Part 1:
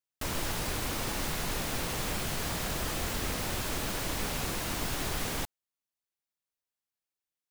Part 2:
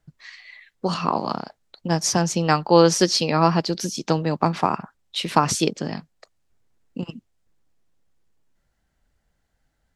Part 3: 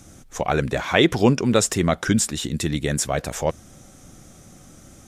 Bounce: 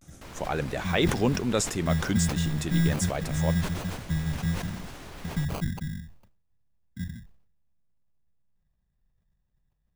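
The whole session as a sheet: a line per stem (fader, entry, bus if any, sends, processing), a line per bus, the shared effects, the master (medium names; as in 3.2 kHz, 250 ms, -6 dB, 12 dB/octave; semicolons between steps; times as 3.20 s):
-9.0 dB, 0.00 s, no send, low-pass 3.3 kHz 6 dB/octave
-4.0 dB, 0.00 s, no send, octave divider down 1 oct, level -3 dB; elliptic band-stop 190–9300 Hz, stop band 40 dB; sample-rate reducer 1.8 kHz, jitter 0%
-8.5 dB, 0.00 s, no send, vibrato 0.34 Hz 47 cents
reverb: none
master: decay stretcher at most 78 dB/s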